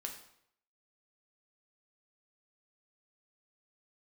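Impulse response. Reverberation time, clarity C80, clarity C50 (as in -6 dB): 0.70 s, 10.5 dB, 7.5 dB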